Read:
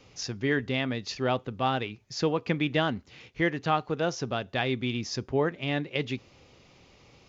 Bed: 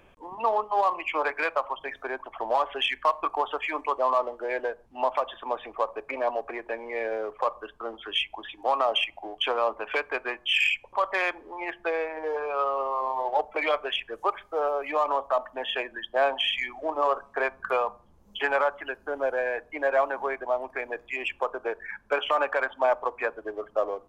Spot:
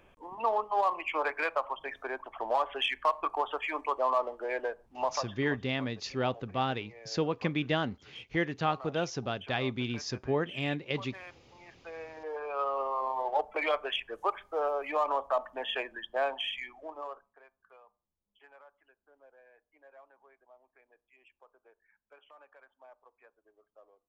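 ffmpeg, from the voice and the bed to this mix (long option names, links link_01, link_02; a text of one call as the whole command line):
ffmpeg -i stem1.wav -i stem2.wav -filter_complex "[0:a]adelay=4950,volume=-3.5dB[link_01];[1:a]volume=13dB,afade=type=out:start_time=4.96:duration=0.64:silence=0.141254,afade=type=in:start_time=11.8:duration=1:silence=0.141254,afade=type=out:start_time=15.75:duration=1.64:silence=0.0375837[link_02];[link_01][link_02]amix=inputs=2:normalize=0" out.wav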